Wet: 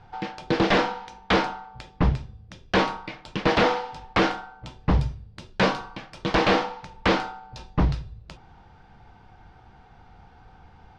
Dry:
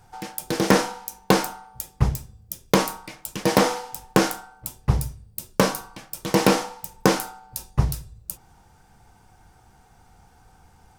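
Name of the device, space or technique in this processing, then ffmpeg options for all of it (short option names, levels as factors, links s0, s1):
synthesiser wavefolder: -filter_complex "[0:a]aeval=exprs='0.158*(abs(mod(val(0)/0.158+3,4)-2)-1)':c=same,lowpass=f=4000:w=0.5412,lowpass=f=4000:w=1.3066,asettb=1/sr,asplit=3[s0][s1][s2];[s0]atrim=end=4.804[s3];[s1]atrim=start=4.8:end=6.37,asetpts=PTS-STARTPTS,afade=t=in:d=0.004:c=qsin,afade=t=out:st=1.566:d=0.004:c=qsin,highshelf=f=10000:g=9[s4];[s2]atrim=start=6.366[s5];[s3][s4]acrossfade=d=0.004:c1=hsin:c2=qsin[s6];[s6][s5]acrossfade=d=0.004:c1=qsin:c2=hsin,volume=1.5"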